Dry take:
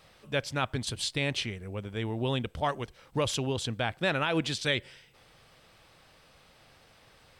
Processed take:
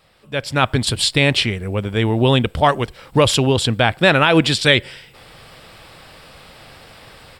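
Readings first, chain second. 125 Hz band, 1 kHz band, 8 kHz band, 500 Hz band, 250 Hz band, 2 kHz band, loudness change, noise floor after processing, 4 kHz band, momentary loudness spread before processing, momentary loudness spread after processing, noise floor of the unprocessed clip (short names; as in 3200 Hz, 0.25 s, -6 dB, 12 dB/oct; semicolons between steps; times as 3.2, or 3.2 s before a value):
+15.0 dB, +15.0 dB, +12.5 dB, +14.5 dB, +15.0 dB, +14.5 dB, +14.5 dB, -47 dBFS, +14.5 dB, 7 LU, 8 LU, -60 dBFS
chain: AGC gain up to 15 dB; notch 6200 Hz, Q 6; gain +1.5 dB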